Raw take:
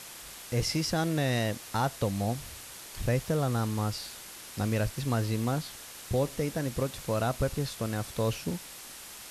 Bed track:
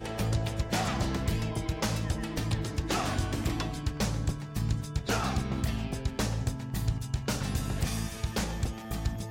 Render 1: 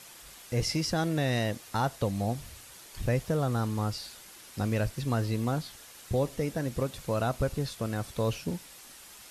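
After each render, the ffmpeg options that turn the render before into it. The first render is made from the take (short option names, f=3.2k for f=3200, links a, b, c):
-af "afftdn=nr=6:nf=-46"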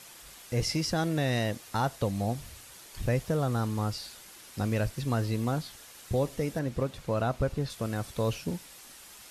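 -filter_complex "[0:a]asettb=1/sr,asplit=3[a][b][c];[a]atrim=end=6.594[d];[b]atrim=start=6.59:end=7.7,asetpts=PTS-STARTPTS,afade=t=in:d=0.004:c=qsin,afade=t=out:st=1.106:d=0.004:c=qsin,aemphasis=mode=reproduction:type=cd[e];[c]atrim=start=7.696[f];[d][e]acrossfade=d=0.004:c1=hsin:c2=qsin[g];[g][f]acrossfade=d=0.004:c1=qsin:c2=hsin"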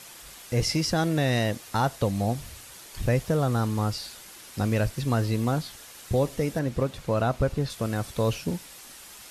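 -af "volume=4dB"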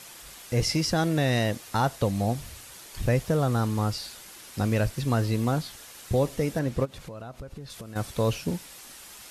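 -filter_complex "[0:a]asplit=3[a][b][c];[a]afade=t=out:st=6.84:d=0.02[d];[b]acompressor=threshold=-37dB:ratio=6:attack=3.2:release=140:knee=1:detection=peak,afade=t=in:st=6.84:d=0.02,afade=t=out:st=7.95:d=0.02[e];[c]afade=t=in:st=7.95:d=0.02[f];[d][e][f]amix=inputs=3:normalize=0"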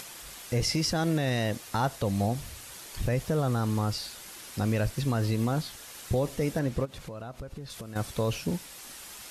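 -af "alimiter=limit=-17.5dB:level=0:latency=1:release=58,acompressor=mode=upward:threshold=-40dB:ratio=2.5"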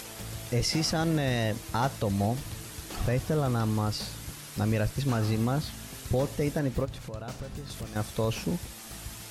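-filter_complex "[1:a]volume=-11.5dB[a];[0:a][a]amix=inputs=2:normalize=0"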